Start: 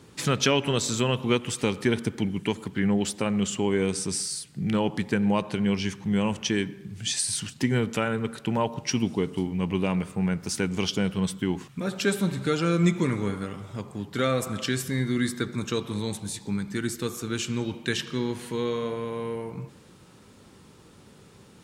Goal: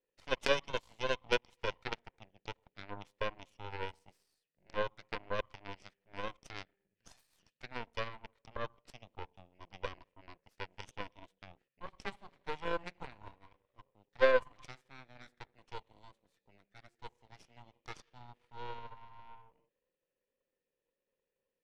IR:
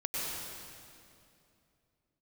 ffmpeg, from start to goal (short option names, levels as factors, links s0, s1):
-filter_complex "[0:a]asplit=3[s0][s1][s2];[s0]bandpass=f=530:t=q:w=8,volume=1[s3];[s1]bandpass=f=1840:t=q:w=8,volume=0.501[s4];[s2]bandpass=f=2480:t=q:w=8,volume=0.355[s5];[s3][s4][s5]amix=inputs=3:normalize=0,aeval=exprs='0.0944*(cos(1*acos(clip(val(0)/0.0944,-1,1)))-cos(1*PI/2))+0.0168*(cos(2*acos(clip(val(0)/0.0944,-1,1)))-cos(2*PI/2))+0.0299*(cos(3*acos(clip(val(0)/0.0944,-1,1)))-cos(3*PI/2))+0.00335*(cos(6*acos(clip(val(0)/0.0944,-1,1)))-cos(6*PI/2))+0.00106*(cos(7*acos(clip(val(0)/0.0944,-1,1)))-cos(7*PI/2))':c=same,volume=2.24"